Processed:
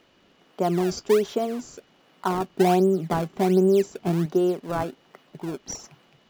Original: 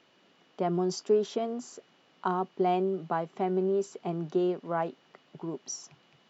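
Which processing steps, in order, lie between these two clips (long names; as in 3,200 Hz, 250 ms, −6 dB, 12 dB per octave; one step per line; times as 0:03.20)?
0:02.50–0:04.26: low-shelf EQ 300 Hz +8 dB
in parallel at −7 dB: sample-and-hold swept by an LFO 26×, swing 160% 1.3 Hz
on the sum: level +2.5 dB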